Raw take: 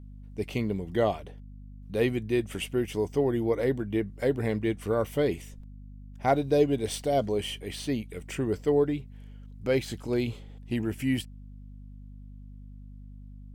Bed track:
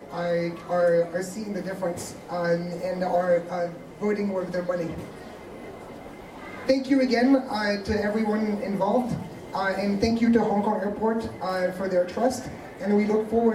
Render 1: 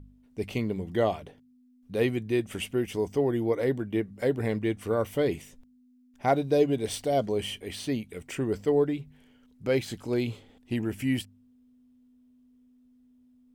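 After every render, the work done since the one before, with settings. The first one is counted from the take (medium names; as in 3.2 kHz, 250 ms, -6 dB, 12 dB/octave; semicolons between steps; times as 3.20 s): de-hum 50 Hz, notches 4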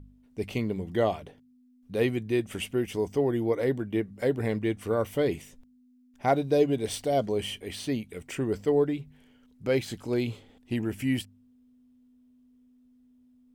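no audible change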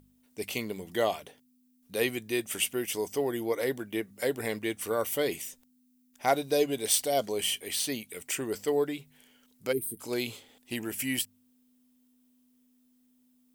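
9.72–10.00 s: time-frequency box 490–8300 Hz -29 dB; RIAA curve recording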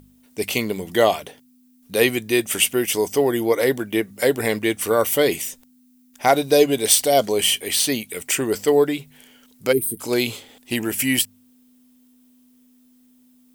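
trim +11 dB; peak limiter -3 dBFS, peak gain reduction 3 dB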